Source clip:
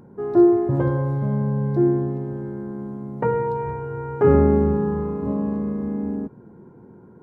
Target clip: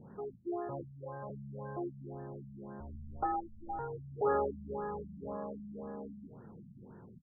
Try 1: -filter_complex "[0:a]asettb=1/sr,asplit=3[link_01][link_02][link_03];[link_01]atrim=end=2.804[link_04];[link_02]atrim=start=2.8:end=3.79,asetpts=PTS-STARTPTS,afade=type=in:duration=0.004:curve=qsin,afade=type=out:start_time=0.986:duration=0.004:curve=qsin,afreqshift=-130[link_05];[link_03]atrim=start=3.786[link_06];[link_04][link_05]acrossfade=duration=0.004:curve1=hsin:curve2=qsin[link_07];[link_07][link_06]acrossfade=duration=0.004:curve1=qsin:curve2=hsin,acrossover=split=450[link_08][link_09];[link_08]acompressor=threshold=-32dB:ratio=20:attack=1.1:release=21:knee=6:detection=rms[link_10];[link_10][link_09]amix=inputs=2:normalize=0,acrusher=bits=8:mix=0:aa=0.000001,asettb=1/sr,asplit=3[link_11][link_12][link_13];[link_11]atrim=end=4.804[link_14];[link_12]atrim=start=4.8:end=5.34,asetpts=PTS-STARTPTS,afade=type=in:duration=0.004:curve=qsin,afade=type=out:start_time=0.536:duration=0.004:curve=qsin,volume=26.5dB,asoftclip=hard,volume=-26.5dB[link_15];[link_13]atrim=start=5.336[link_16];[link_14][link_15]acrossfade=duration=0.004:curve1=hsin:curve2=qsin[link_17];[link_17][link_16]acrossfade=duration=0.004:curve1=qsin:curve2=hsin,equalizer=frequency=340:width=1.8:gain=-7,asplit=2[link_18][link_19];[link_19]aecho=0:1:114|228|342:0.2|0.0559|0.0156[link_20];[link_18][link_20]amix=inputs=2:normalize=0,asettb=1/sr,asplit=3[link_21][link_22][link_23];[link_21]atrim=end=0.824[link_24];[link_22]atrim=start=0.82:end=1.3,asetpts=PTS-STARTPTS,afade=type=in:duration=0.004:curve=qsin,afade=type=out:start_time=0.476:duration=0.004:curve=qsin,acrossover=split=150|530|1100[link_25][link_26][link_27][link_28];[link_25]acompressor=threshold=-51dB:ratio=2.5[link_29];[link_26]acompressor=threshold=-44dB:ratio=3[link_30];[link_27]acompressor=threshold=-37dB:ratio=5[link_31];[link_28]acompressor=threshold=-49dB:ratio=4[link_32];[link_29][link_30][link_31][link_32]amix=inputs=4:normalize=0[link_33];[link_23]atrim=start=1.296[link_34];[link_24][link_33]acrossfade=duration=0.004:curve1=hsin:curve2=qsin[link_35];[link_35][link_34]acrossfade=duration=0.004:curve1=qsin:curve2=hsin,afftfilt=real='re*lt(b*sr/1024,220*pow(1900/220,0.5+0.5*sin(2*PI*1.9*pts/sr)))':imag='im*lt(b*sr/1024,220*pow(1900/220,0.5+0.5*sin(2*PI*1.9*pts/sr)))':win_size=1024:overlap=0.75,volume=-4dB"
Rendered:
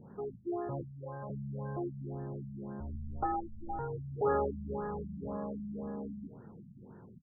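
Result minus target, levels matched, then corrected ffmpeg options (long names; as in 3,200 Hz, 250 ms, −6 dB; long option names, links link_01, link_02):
downward compressor: peak gain reduction −6.5 dB
-filter_complex "[0:a]asettb=1/sr,asplit=3[link_01][link_02][link_03];[link_01]atrim=end=2.804[link_04];[link_02]atrim=start=2.8:end=3.79,asetpts=PTS-STARTPTS,afade=type=in:duration=0.004:curve=qsin,afade=type=out:start_time=0.986:duration=0.004:curve=qsin,afreqshift=-130[link_05];[link_03]atrim=start=3.786[link_06];[link_04][link_05]acrossfade=duration=0.004:curve1=hsin:curve2=qsin[link_07];[link_07][link_06]acrossfade=duration=0.004:curve1=qsin:curve2=hsin,acrossover=split=450[link_08][link_09];[link_08]acompressor=threshold=-39dB:ratio=20:attack=1.1:release=21:knee=6:detection=rms[link_10];[link_10][link_09]amix=inputs=2:normalize=0,acrusher=bits=8:mix=0:aa=0.000001,asettb=1/sr,asplit=3[link_11][link_12][link_13];[link_11]atrim=end=4.804[link_14];[link_12]atrim=start=4.8:end=5.34,asetpts=PTS-STARTPTS,afade=type=in:duration=0.004:curve=qsin,afade=type=out:start_time=0.536:duration=0.004:curve=qsin,volume=26.5dB,asoftclip=hard,volume=-26.5dB[link_15];[link_13]atrim=start=5.336[link_16];[link_14][link_15]acrossfade=duration=0.004:curve1=hsin:curve2=qsin[link_17];[link_17][link_16]acrossfade=duration=0.004:curve1=qsin:curve2=hsin,equalizer=frequency=340:width=1.8:gain=-7,asplit=2[link_18][link_19];[link_19]aecho=0:1:114|228|342:0.2|0.0559|0.0156[link_20];[link_18][link_20]amix=inputs=2:normalize=0,asettb=1/sr,asplit=3[link_21][link_22][link_23];[link_21]atrim=end=0.824[link_24];[link_22]atrim=start=0.82:end=1.3,asetpts=PTS-STARTPTS,afade=type=in:duration=0.004:curve=qsin,afade=type=out:start_time=0.476:duration=0.004:curve=qsin,acrossover=split=150|530|1100[link_25][link_26][link_27][link_28];[link_25]acompressor=threshold=-51dB:ratio=2.5[link_29];[link_26]acompressor=threshold=-44dB:ratio=3[link_30];[link_27]acompressor=threshold=-37dB:ratio=5[link_31];[link_28]acompressor=threshold=-49dB:ratio=4[link_32];[link_29][link_30][link_31][link_32]amix=inputs=4:normalize=0[link_33];[link_23]atrim=start=1.296[link_34];[link_24][link_33]acrossfade=duration=0.004:curve1=hsin:curve2=qsin[link_35];[link_35][link_34]acrossfade=duration=0.004:curve1=qsin:curve2=hsin,afftfilt=real='re*lt(b*sr/1024,220*pow(1900/220,0.5+0.5*sin(2*PI*1.9*pts/sr)))':imag='im*lt(b*sr/1024,220*pow(1900/220,0.5+0.5*sin(2*PI*1.9*pts/sr)))':win_size=1024:overlap=0.75,volume=-4dB"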